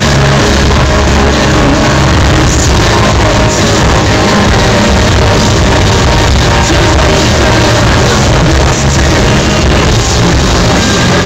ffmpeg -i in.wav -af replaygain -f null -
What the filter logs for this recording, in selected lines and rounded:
track_gain = -8.4 dB
track_peak = 0.460